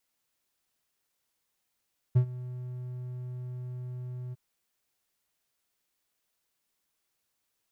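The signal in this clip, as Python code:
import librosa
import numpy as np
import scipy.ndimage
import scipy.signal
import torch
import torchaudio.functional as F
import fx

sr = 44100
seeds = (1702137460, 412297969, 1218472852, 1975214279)

y = fx.adsr_tone(sr, wave='triangle', hz=125.0, attack_ms=15.0, decay_ms=86.0, sustain_db=-19.0, held_s=2.18, release_ms=24.0, level_db=-14.5)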